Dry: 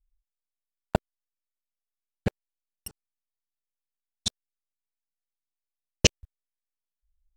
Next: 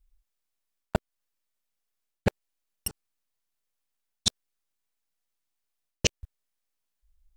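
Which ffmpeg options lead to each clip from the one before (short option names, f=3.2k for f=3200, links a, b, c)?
-af "alimiter=limit=-11.5dB:level=0:latency=1:release=294,areverse,acompressor=threshold=-29dB:ratio=6,areverse,volume=8dB"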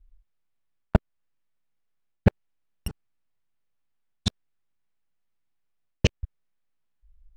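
-af "bass=f=250:g=8,treble=f=4k:g=-14,volume=2dB"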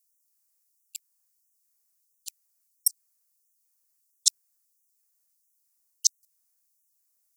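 -filter_complex "[0:a]acrossover=split=220[a][b];[b]aexciter=amount=14.2:drive=4.9:freq=5k[c];[a][c]amix=inputs=2:normalize=0,afftfilt=real='re*gte(b*sr/1024,420*pow(5700/420,0.5+0.5*sin(2*PI*1.5*pts/sr)))':imag='im*gte(b*sr/1024,420*pow(5700/420,0.5+0.5*sin(2*PI*1.5*pts/sr)))':win_size=1024:overlap=0.75,volume=-3dB"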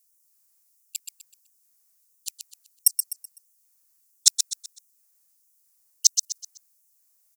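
-filter_complex "[0:a]acontrast=52,asplit=2[a][b];[b]aecho=0:1:126|252|378|504:0.447|0.156|0.0547|0.0192[c];[a][c]amix=inputs=2:normalize=0"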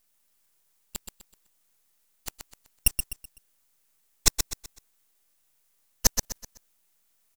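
-af "aeval=exprs='max(val(0),0)':c=same"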